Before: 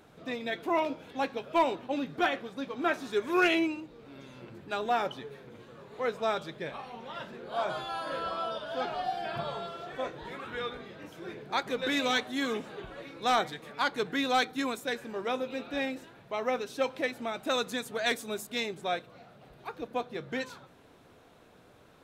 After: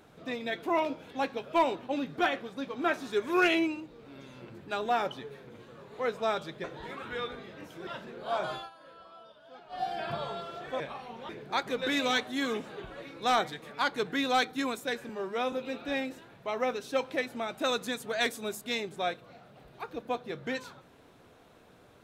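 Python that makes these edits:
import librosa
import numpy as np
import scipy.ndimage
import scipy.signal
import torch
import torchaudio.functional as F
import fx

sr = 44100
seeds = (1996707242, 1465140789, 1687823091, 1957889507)

y = fx.edit(x, sr, fx.swap(start_s=6.64, length_s=0.49, other_s=10.06, other_length_s=1.23),
    fx.fade_down_up(start_s=7.82, length_s=1.27, db=-18.0, fade_s=0.14),
    fx.stretch_span(start_s=15.09, length_s=0.29, factor=1.5), tone=tone)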